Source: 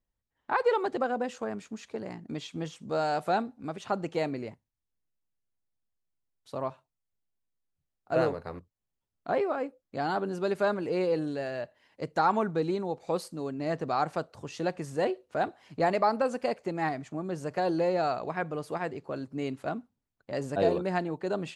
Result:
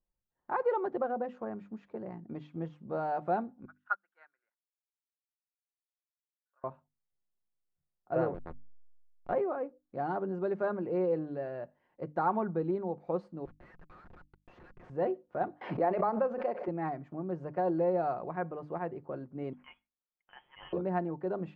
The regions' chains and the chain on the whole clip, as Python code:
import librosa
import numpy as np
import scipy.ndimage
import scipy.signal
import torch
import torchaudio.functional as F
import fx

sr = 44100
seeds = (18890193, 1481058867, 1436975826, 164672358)

y = fx.chain(x, sr, fx.highpass_res(hz=1500.0, q=13.0),
    fx.upward_expand(threshold_db=-41.0, expansion=2.5), at=(3.65, 6.64))
y = fx.chain(y, sr, fx.peak_eq(hz=3400.0, db=8.5, octaves=2.2),
    fx.backlash(play_db=-25.5),
    fx.sustainer(db_per_s=33.0), at=(8.34, 9.34))
y = fx.chain(y, sr, fx.steep_highpass(hz=1600.0, slope=36),
    fx.schmitt(flips_db=-50.0), at=(13.45, 14.9))
y = fx.chain(y, sr, fx.bandpass_edges(low_hz=280.0, high_hz=4400.0),
    fx.pre_swell(db_per_s=56.0), at=(15.61, 16.68))
y = fx.chain(y, sr, fx.highpass(hz=1100.0, slope=12),
    fx.freq_invert(carrier_hz=3600), at=(19.53, 20.73))
y = scipy.signal.sosfilt(scipy.signal.butter(2, 1200.0, 'lowpass', fs=sr, output='sos'), y)
y = fx.hum_notches(y, sr, base_hz=50, count=6)
y = y + 0.31 * np.pad(y, (int(5.6 * sr / 1000.0), 0))[:len(y)]
y = y * 10.0 ** (-3.5 / 20.0)